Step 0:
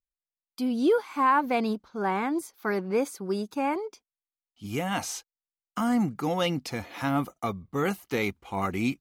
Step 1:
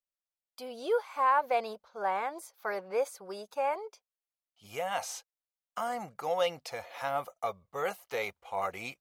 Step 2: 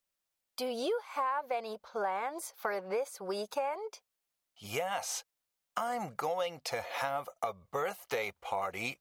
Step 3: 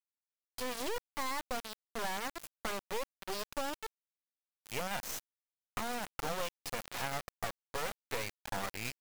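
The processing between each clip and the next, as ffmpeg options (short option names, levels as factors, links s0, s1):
-af "lowshelf=f=400:t=q:w=3:g=-11.5,volume=0.531"
-af "acompressor=threshold=0.01:ratio=6,volume=2.66"
-af "acrusher=bits=3:dc=4:mix=0:aa=0.000001,volume=0.891"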